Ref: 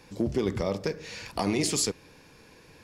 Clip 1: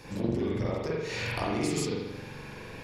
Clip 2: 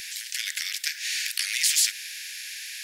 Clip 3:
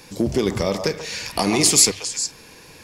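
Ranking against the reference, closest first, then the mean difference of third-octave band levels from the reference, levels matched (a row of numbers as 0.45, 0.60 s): 3, 1, 2; 4.0, 8.0, 24.0 dB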